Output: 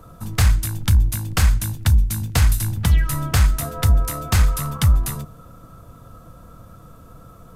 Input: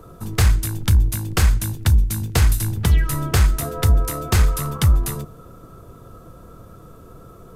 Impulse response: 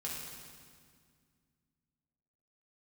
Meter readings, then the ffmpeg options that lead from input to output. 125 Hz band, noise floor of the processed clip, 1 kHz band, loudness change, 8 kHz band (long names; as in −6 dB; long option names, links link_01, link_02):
0.0 dB, −45 dBFS, −0.5 dB, 0.0 dB, 0.0 dB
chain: -af "equalizer=frequency=390:width_type=o:width=0.4:gain=-13.5"